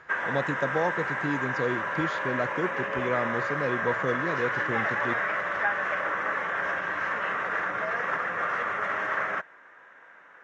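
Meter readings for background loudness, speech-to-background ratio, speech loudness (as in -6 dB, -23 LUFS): -28.5 LUFS, -3.5 dB, -32.0 LUFS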